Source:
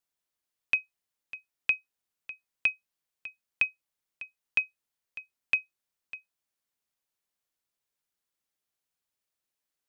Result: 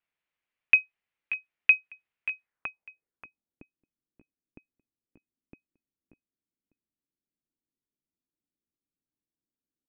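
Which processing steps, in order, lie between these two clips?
low-pass sweep 2400 Hz -> 290 Hz, 2.4–3.2; outdoor echo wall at 100 m, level -10 dB

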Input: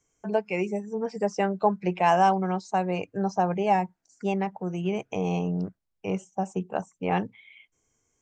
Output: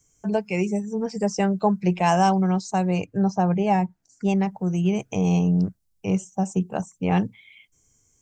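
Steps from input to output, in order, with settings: tone controls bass +11 dB, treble +12 dB, from 3.04 s treble +3 dB, from 4.28 s treble +12 dB

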